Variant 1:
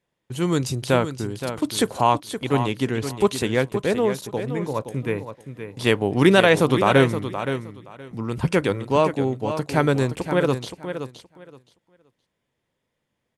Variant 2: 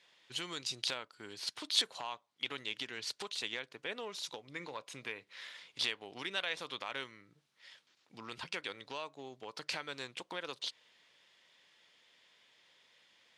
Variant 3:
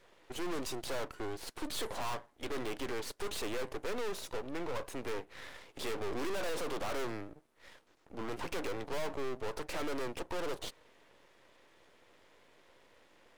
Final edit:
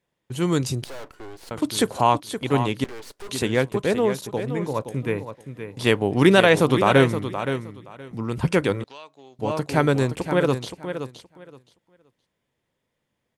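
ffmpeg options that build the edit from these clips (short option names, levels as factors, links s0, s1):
-filter_complex "[2:a]asplit=2[s0][s1];[0:a]asplit=4[s2][s3][s4][s5];[s2]atrim=end=0.842[s6];[s0]atrim=start=0.838:end=1.512[s7];[s3]atrim=start=1.508:end=2.842[s8];[s1]atrim=start=2.838:end=3.292[s9];[s4]atrim=start=3.288:end=8.842[s10];[1:a]atrim=start=8.838:end=9.392[s11];[s5]atrim=start=9.388[s12];[s6][s7]acrossfade=d=0.004:c1=hsin:c2=hsin[s13];[s13][s8]acrossfade=d=0.004:c1=hsin:c2=hsin[s14];[s14][s9]acrossfade=d=0.004:c1=hsin:c2=hsin[s15];[s15][s10]acrossfade=d=0.004:c1=hsin:c2=hsin[s16];[s16][s11]acrossfade=d=0.004:c1=hsin:c2=hsin[s17];[s17][s12]acrossfade=d=0.004:c1=hsin:c2=hsin"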